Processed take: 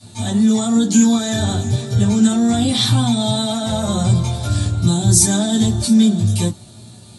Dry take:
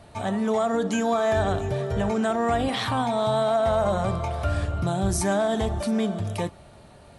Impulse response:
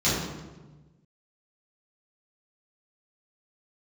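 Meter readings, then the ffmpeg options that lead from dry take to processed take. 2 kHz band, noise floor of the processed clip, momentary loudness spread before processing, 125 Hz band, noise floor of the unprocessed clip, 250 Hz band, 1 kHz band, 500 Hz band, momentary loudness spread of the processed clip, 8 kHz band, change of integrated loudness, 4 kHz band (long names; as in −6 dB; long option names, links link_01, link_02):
+0.5 dB, −41 dBFS, 5 LU, +12.0 dB, −49 dBFS, +12.5 dB, −2.0 dB, −2.5 dB, 7 LU, +17.5 dB, +9.0 dB, +13.5 dB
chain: -filter_complex "[0:a]equalizer=frequency=250:width_type=o:width=1:gain=-3,equalizer=frequency=500:width_type=o:width=1:gain=-11,equalizer=frequency=1000:width_type=o:width=1:gain=-5,equalizer=frequency=2000:width_type=o:width=1:gain=-7,equalizer=frequency=4000:width_type=o:width=1:gain=9,equalizer=frequency=8000:width_type=o:width=1:gain=11[link_01];[1:a]atrim=start_sample=2205,atrim=end_sample=3087,asetrate=74970,aresample=44100[link_02];[link_01][link_02]afir=irnorm=-1:irlink=0,volume=-2dB"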